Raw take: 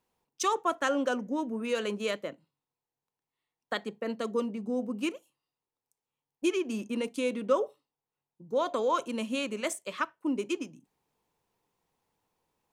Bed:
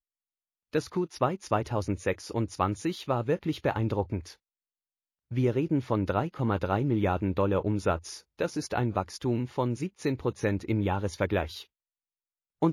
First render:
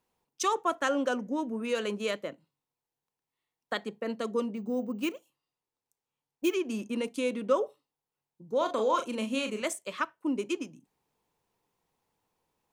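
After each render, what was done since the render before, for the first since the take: 4.55–6.54 s: careless resampling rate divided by 2×, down filtered, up hold; 8.57–9.62 s: doubling 37 ms -6.5 dB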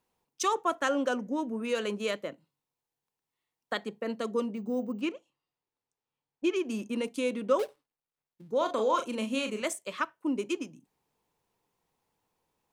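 5.01–6.56 s: distance through air 96 m; 7.59–8.51 s: dead-time distortion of 0.18 ms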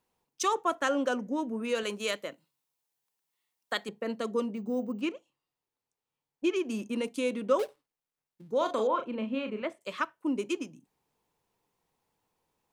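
1.83–3.89 s: tilt EQ +2 dB/octave; 8.87–9.81 s: distance through air 420 m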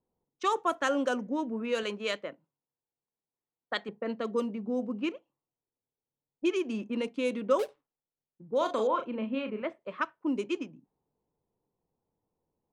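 level-controlled noise filter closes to 570 Hz, open at -24 dBFS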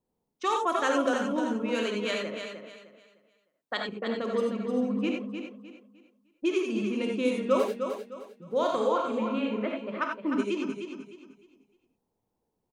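feedback delay 305 ms, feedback 30%, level -7.5 dB; gated-style reverb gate 110 ms rising, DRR 1.5 dB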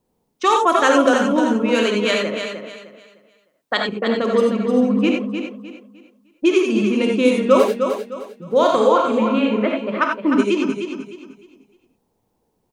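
trim +11.5 dB; peak limiter -2 dBFS, peak gain reduction 1 dB

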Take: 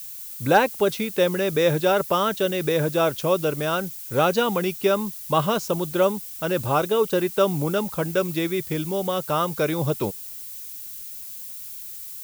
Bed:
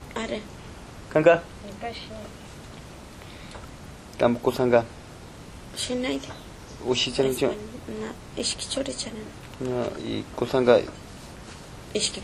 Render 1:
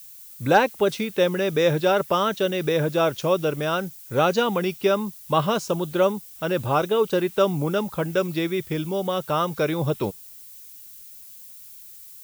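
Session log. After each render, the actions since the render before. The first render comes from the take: noise print and reduce 7 dB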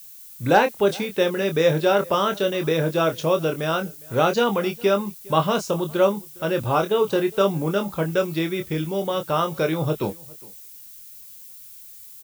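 doubling 25 ms -7 dB; echo from a far wall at 70 m, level -24 dB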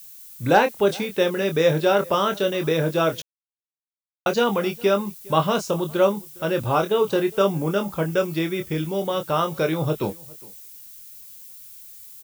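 3.22–4.26 s: mute; 7.34–8.75 s: band-stop 3.9 kHz, Q 11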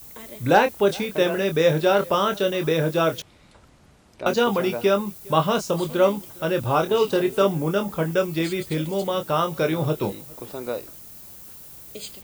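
add bed -12 dB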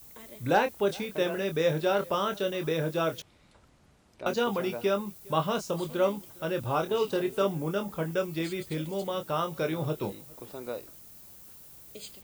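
trim -7.5 dB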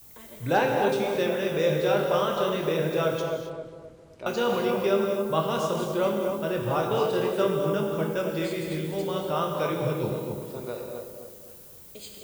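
filtered feedback delay 261 ms, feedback 45%, low-pass 970 Hz, level -4.5 dB; gated-style reverb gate 300 ms flat, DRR 2 dB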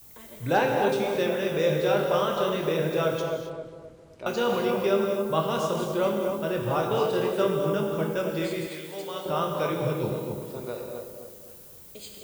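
8.67–9.26 s: high-pass 800 Hz 6 dB/octave

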